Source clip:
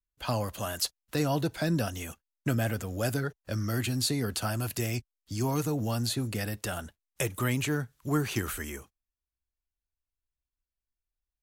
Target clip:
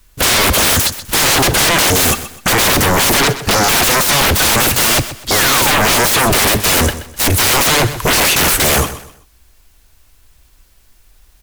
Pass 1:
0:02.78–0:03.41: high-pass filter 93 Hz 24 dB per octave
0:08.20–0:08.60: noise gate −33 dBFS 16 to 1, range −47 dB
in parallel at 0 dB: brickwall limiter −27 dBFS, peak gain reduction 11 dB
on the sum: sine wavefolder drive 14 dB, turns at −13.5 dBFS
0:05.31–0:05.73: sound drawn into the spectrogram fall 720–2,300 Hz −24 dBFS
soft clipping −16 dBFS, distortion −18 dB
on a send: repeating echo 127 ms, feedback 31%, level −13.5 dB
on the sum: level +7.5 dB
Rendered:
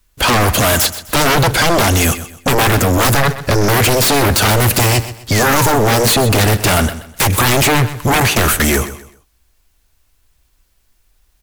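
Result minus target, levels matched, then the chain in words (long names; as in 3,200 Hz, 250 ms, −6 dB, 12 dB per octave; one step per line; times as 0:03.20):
sine wavefolder: distortion −26 dB
0:02.78–0:03.41: high-pass filter 93 Hz 24 dB per octave
0:08.20–0:08.60: noise gate −33 dBFS 16 to 1, range −47 dB
in parallel at 0 dB: brickwall limiter −27 dBFS, peak gain reduction 11 dB
on the sum: sine wavefolder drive 23 dB, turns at −13.5 dBFS
0:05.31–0:05.73: sound drawn into the spectrogram fall 720–2,300 Hz −24 dBFS
soft clipping −16 dBFS, distortion −18 dB
on a send: repeating echo 127 ms, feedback 31%, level −13.5 dB
on the sum: level +7.5 dB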